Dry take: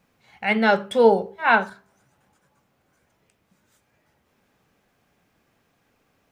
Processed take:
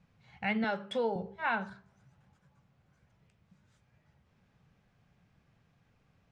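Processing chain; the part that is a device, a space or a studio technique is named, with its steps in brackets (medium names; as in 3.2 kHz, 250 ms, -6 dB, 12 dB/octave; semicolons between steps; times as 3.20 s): jukebox (low-pass 5.6 kHz 12 dB/octave; resonant low shelf 210 Hz +9.5 dB, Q 1.5; compression 5:1, threshold -22 dBFS, peak gain reduction 10.5 dB); 0.64–1.16 s: high-pass 250 Hz 12 dB/octave; trim -6.5 dB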